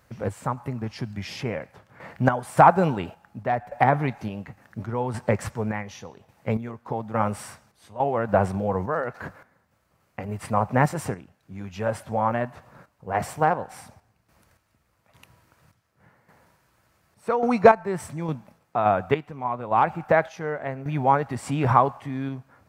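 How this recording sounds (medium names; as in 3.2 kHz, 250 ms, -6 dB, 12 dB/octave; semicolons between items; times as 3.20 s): random-step tremolo, depth 80%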